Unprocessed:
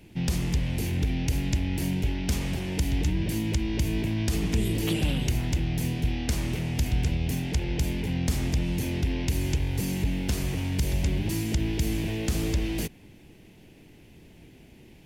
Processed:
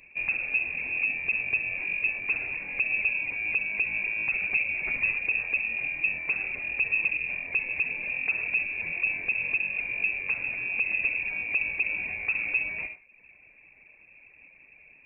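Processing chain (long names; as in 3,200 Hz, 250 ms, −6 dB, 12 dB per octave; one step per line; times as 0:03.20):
reverb reduction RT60 0.71 s
on a send at −9 dB: convolution reverb RT60 0.40 s, pre-delay 52 ms
on the sum: voice inversion scrambler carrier 2,600 Hz
level −2.5 dB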